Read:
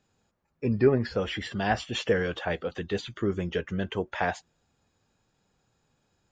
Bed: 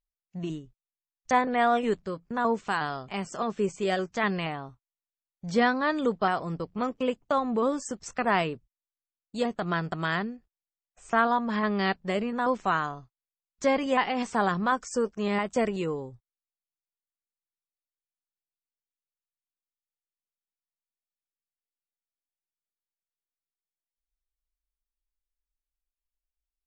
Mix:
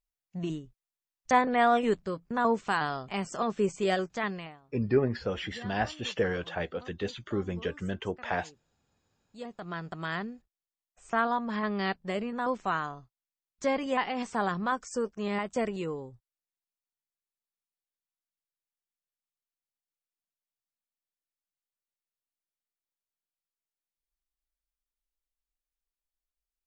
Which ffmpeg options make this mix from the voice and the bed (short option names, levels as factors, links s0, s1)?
-filter_complex "[0:a]adelay=4100,volume=0.668[s0];[1:a]volume=8.41,afade=t=out:st=3.91:d=0.69:silence=0.0749894,afade=t=in:st=9.13:d=1.21:silence=0.11885[s1];[s0][s1]amix=inputs=2:normalize=0"